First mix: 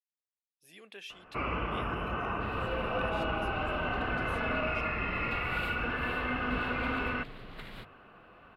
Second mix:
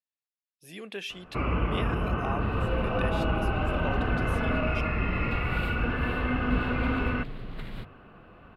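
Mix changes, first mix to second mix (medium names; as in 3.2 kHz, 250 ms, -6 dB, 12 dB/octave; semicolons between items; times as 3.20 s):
speech +8.0 dB; master: add bass shelf 350 Hz +11 dB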